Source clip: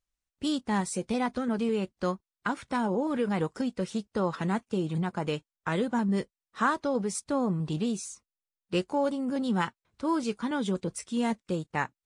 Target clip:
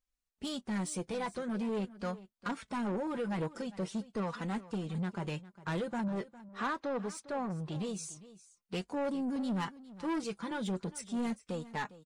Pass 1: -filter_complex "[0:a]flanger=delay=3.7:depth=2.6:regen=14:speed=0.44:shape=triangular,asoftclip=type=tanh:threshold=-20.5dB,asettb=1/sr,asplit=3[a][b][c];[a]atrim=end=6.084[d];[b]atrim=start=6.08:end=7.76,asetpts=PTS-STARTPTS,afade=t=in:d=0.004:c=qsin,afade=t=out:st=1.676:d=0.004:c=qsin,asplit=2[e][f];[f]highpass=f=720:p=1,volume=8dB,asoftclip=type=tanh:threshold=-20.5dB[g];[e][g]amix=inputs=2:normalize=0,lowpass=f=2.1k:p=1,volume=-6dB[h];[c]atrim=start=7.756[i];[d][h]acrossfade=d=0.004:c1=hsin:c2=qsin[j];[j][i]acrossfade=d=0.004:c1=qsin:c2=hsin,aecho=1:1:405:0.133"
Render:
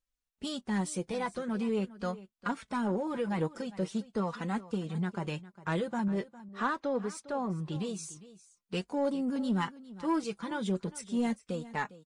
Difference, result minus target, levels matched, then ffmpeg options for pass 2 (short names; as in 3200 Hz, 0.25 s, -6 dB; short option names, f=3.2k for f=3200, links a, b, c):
soft clip: distortion -11 dB
-filter_complex "[0:a]flanger=delay=3.7:depth=2.6:regen=14:speed=0.44:shape=triangular,asoftclip=type=tanh:threshold=-30dB,asettb=1/sr,asplit=3[a][b][c];[a]atrim=end=6.084[d];[b]atrim=start=6.08:end=7.76,asetpts=PTS-STARTPTS,afade=t=in:d=0.004:c=qsin,afade=t=out:st=1.676:d=0.004:c=qsin,asplit=2[e][f];[f]highpass=f=720:p=1,volume=8dB,asoftclip=type=tanh:threshold=-20.5dB[g];[e][g]amix=inputs=2:normalize=0,lowpass=f=2.1k:p=1,volume=-6dB[h];[c]atrim=start=7.756[i];[d][h]acrossfade=d=0.004:c1=hsin:c2=qsin[j];[j][i]acrossfade=d=0.004:c1=qsin:c2=hsin,aecho=1:1:405:0.133"